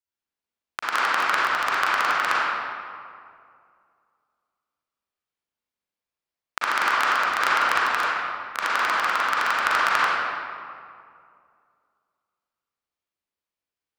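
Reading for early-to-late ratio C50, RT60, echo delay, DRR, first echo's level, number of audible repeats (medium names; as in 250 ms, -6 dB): -6.5 dB, 2.3 s, no echo, -9.0 dB, no echo, no echo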